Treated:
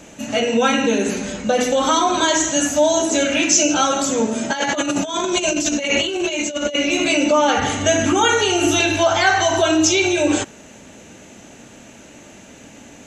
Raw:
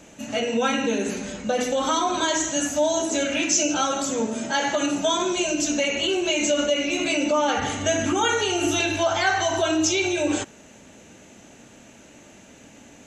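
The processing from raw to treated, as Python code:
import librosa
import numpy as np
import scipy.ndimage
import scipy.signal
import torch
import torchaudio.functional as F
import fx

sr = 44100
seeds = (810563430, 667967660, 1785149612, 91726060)

y = fx.over_compress(x, sr, threshold_db=-26.0, ratio=-0.5, at=(4.5, 6.76))
y = y * librosa.db_to_amplitude(6.0)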